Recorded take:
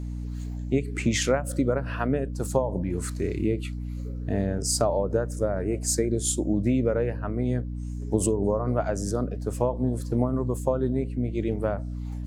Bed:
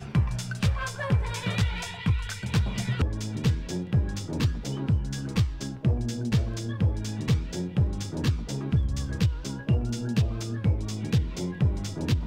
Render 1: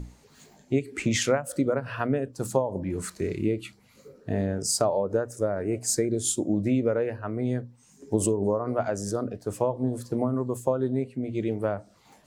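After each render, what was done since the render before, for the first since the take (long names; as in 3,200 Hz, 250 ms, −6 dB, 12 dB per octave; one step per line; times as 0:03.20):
mains-hum notches 60/120/180/240/300 Hz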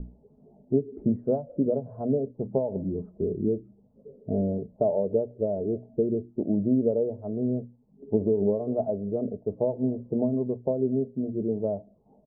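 Butterworth low-pass 690 Hz 36 dB per octave
comb filter 4.7 ms, depth 40%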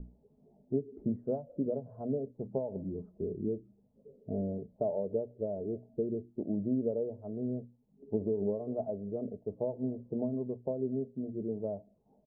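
level −8 dB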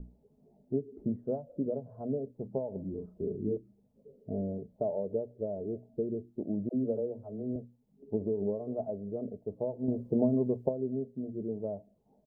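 0:02.90–0:03.57: double-tracking delay 38 ms −4.5 dB
0:06.69–0:07.56: all-pass dispersion lows, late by 64 ms, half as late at 370 Hz
0:09.88–0:10.69: clip gain +7 dB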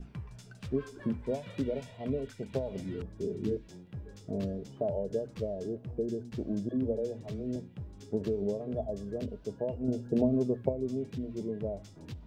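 mix in bed −18.5 dB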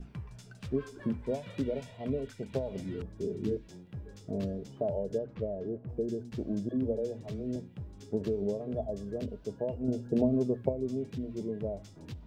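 0:05.17–0:05.88: low-pass filter 2,700 Hz → 1,700 Hz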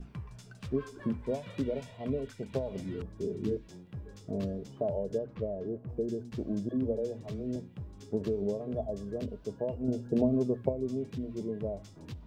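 parametric band 1,100 Hz +4.5 dB 0.24 octaves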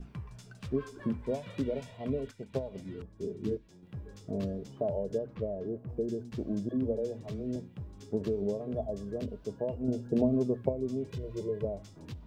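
0:02.31–0:03.83: expander for the loud parts, over −43 dBFS
0:11.06–0:11.65: comb filter 2 ms, depth 86%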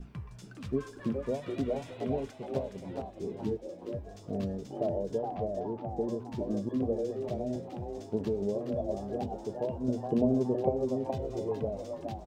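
echo with shifted repeats 419 ms, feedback 31%, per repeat +140 Hz, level −6 dB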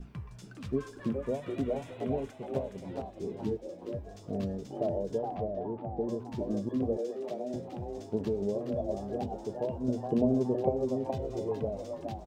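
0:01.11–0:02.78: parametric band 4,700 Hz −6 dB 0.75 octaves
0:05.41–0:06.09: high-frequency loss of the air 270 metres
0:06.97–0:07.54: Bessel high-pass filter 300 Hz, order 4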